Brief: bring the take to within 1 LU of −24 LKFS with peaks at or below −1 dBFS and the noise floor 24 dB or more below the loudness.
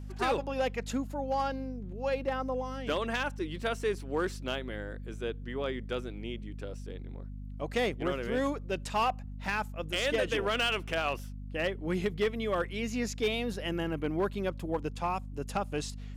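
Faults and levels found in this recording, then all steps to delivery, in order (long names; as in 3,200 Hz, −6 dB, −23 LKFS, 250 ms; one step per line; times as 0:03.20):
share of clipped samples 0.6%; peaks flattened at −22.5 dBFS; mains hum 50 Hz; hum harmonics up to 250 Hz; level of the hum −39 dBFS; integrated loudness −33.0 LKFS; sample peak −22.5 dBFS; target loudness −24.0 LKFS
→ clipped peaks rebuilt −22.5 dBFS
hum removal 50 Hz, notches 5
level +9 dB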